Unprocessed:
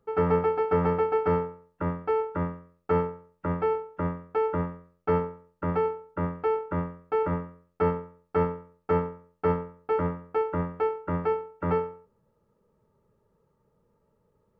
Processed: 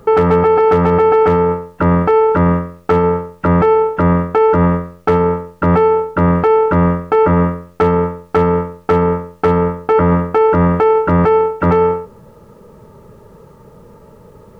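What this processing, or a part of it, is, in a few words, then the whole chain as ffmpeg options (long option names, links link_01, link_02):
loud club master: -af "acompressor=threshold=-28dB:ratio=2,asoftclip=type=hard:threshold=-21.5dB,alimiter=level_in=33dB:limit=-1dB:release=50:level=0:latency=1,volume=-4.5dB"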